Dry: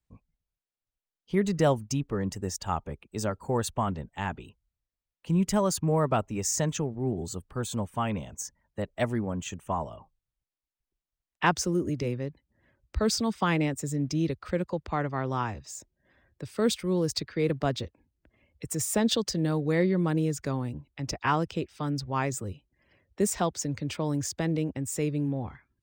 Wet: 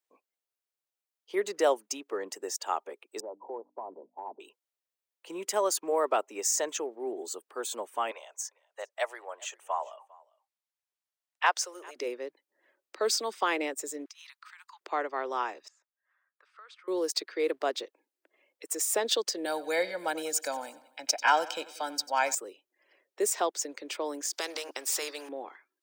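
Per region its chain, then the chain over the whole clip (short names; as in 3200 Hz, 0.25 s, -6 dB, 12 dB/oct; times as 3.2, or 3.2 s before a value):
3.2–4.4 Chebyshev low-pass 1000 Hz, order 6 + notches 50/100/150/200/250/300 Hz + compressor 5:1, threshold -33 dBFS
8.11–11.96 HPF 600 Hz 24 dB/oct + high shelf 12000 Hz -7.5 dB + echo 0.401 s -24 dB
14.05–14.81 steep high-pass 920 Hz 72 dB/oct + compressor 10:1, threshold -46 dBFS
15.68–16.88 ladder band-pass 1400 Hz, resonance 65% + compressor, threshold -47 dBFS
19.45–22.35 high shelf 4000 Hz +7.5 dB + comb 1.3 ms, depth 95% + feedback echo 93 ms, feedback 53%, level -18 dB
24.33–25.29 bell 5100 Hz +11.5 dB 0.62 oct + notch 310 Hz, Q 9.7 + spectral compressor 2:1
whole clip: steep high-pass 350 Hz 36 dB/oct; high shelf 8700 Hz +3.5 dB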